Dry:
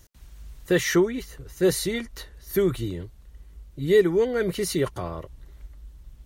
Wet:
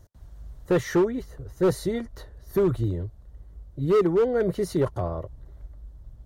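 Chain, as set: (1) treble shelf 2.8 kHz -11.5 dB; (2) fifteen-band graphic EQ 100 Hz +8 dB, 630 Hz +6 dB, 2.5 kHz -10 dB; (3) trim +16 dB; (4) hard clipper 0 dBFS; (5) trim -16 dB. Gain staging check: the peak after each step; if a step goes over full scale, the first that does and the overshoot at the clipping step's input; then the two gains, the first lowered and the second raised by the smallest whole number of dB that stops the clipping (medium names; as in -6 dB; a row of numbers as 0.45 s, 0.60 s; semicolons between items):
-9.0 dBFS, -8.0 dBFS, +8.0 dBFS, 0.0 dBFS, -16.0 dBFS; step 3, 8.0 dB; step 3 +8 dB, step 5 -8 dB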